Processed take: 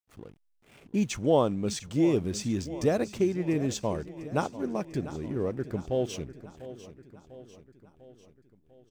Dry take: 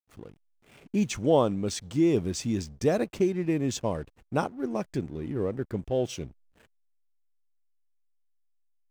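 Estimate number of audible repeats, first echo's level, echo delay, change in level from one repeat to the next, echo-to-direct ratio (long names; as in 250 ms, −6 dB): 4, −15.0 dB, 697 ms, −5.0 dB, −13.5 dB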